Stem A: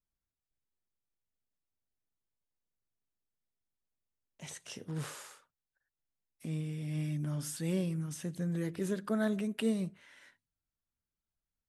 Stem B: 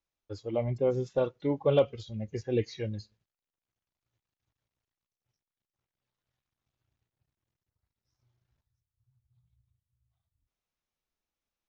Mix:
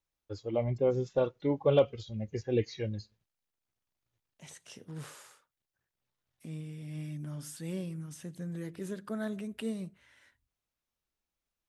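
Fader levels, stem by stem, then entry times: -4.5, -0.5 dB; 0.00, 0.00 s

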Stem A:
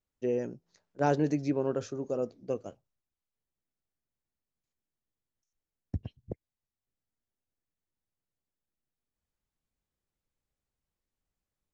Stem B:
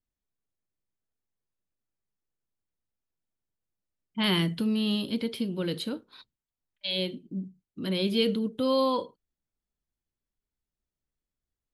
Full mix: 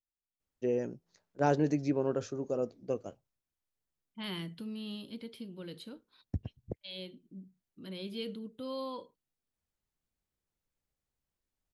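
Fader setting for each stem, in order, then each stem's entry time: -1.0, -14.0 dB; 0.40, 0.00 s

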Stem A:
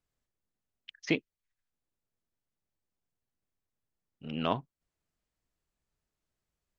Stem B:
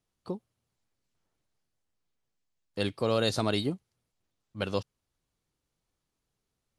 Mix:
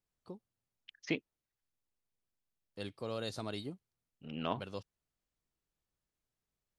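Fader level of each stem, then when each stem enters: -6.0, -12.5 dB; 0.00, 0.00 s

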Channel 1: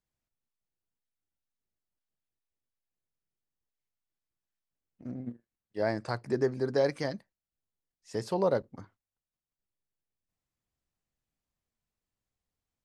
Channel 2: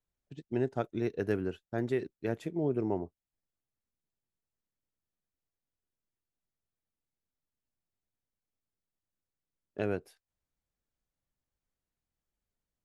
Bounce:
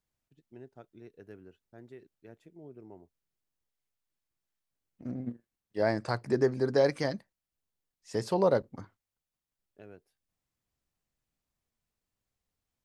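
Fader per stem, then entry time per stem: +2.0, -18.5 dB; 0.00, 0.00 s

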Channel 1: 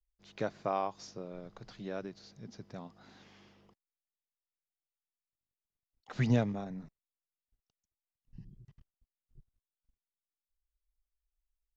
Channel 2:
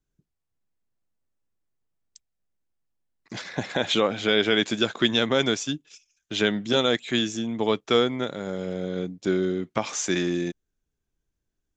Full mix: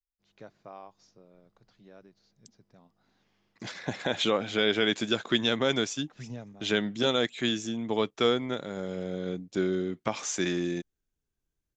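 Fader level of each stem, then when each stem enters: -13.0, -4.0 dB; 0.00, 0.30 s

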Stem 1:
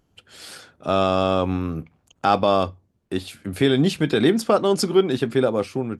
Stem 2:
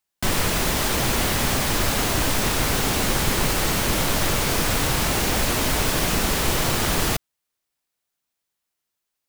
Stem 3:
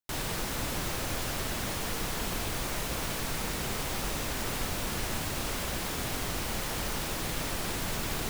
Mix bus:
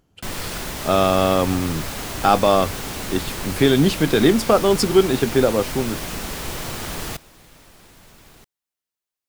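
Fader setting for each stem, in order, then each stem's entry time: +2.5, -7.5, -15.5 dB; 0.00, 0.00, 0.15 s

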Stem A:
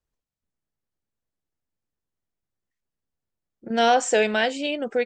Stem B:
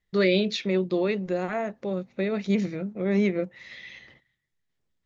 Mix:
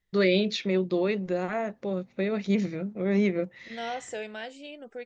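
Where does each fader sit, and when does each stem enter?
-16.0, -1.0 dB; 0.00, 0.00 s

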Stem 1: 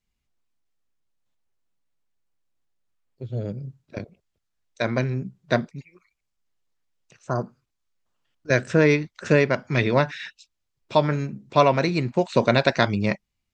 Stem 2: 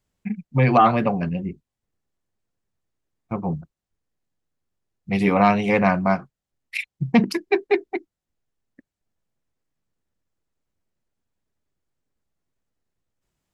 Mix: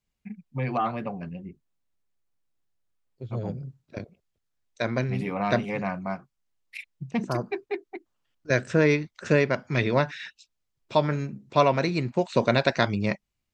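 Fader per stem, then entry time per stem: -3.0, -11.5 dB; 0.00, 0.00 s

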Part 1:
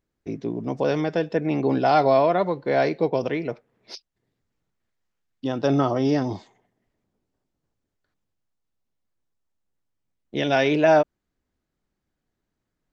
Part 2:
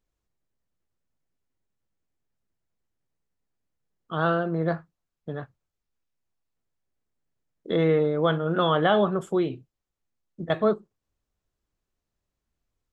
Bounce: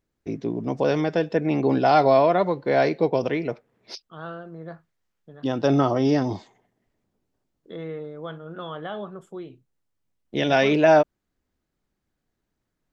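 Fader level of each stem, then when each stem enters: +1.0, -12.5 dB; 0.00, 0.00 s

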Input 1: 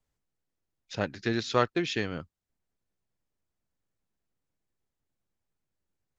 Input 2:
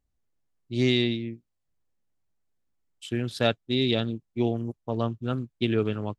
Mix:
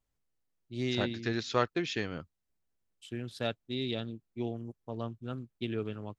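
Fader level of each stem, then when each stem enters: -3.5, -10.0 dB; 0.00, 0.00 s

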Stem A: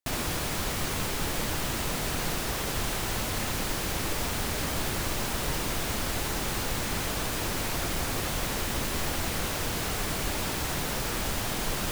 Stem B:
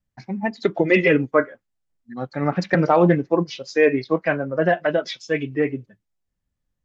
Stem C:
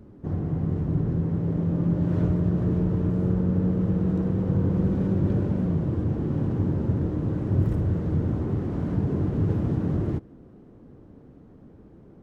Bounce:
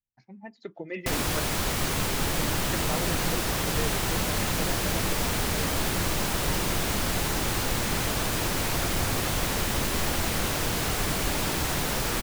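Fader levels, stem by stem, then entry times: +3.0, -19.0, -15.5 dB; 1.00, 0.00, 1.45 s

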